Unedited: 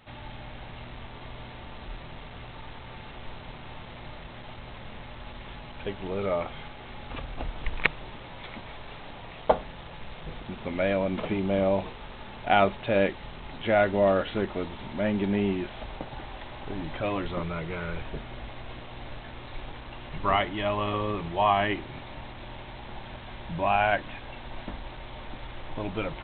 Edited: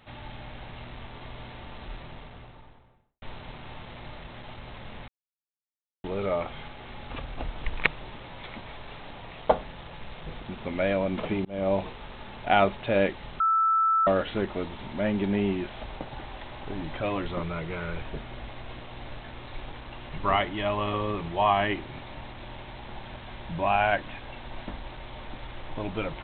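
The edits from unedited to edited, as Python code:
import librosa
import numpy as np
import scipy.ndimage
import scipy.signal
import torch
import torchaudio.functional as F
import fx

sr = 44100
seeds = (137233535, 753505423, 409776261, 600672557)

y = fx.studio_fade_out(x, sr, start_s=1.91, length_s=1.31)
y = fx.edit(y, sr, fx.silence(start_s=5.08, length_s=0.96),
    fx.fade_in_span(start_s=11.45, length_s=0.27),
    fx.bleep(start_s=13.4, length_s=0.67, hz=1320.0, db=-19.5), tone=tone)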